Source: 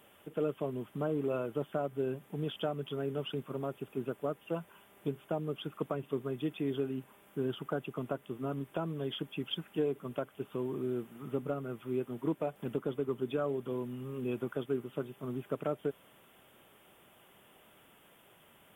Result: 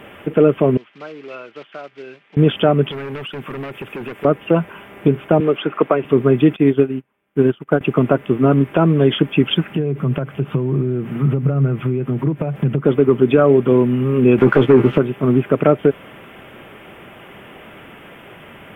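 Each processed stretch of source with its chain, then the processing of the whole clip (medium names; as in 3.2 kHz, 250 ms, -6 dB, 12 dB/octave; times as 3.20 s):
0.77–2.37 s: block-companded coder 5-bit + low-pass 4.5 kHz 24 dB/octave + differentiator
2.91–4.25 s: hard clipper -38 dBFS + tilt shelf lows -5.5 dB, about 1.3 kHz + compression, threshold -48 dBFS
5.40–6.05 s: tone controls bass -15 dB, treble -9 dB + three bands compressed up and down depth 40%
6.56–7.81 s: treble shelf 3.4 kHz +5 dB + upward expansion 2.5:1, over -51 dBFS
9.68–12.85 s: compression, threshold -43 dBFS + peaking EQ 140 Hz +14.5 dB 0.53 oct
14.38–14.98 s: treble shelf 10 kHz -8 dB + waveshaping leveller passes 2 + doubling 15 ms -8 dB
whole clip: FFT filter 330 Hz 0 dB, 960 Hz -4 dB, 2.3 kHz +1 dB, 4 kHz -13 dB, 6.5 kHz -17 dB, 9.7 kHz -19 dB; loudness maximiser +25.5 dB; trim -1.5 dB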